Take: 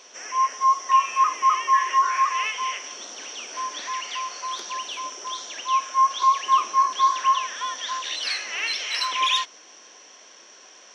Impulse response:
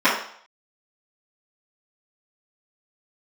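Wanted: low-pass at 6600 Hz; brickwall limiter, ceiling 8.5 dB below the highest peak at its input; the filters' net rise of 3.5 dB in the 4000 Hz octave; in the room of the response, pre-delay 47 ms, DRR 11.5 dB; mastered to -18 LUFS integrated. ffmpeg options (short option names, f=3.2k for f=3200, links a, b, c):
-filter_complex "[0:a]lowpass=6.6k,equalizer=f=4k:t=o:g=5,alimiter=limit=-16dB:level=0:latency=1,asplit=2[a][b];[1:a]atrim=start_sample=2205,adelay=47[c];[b][c]afir=irnorm=-1:irlink=0,volume=-34dB[d];[a][d]amix=inputs=2:normalize=0,volume=6.5dB"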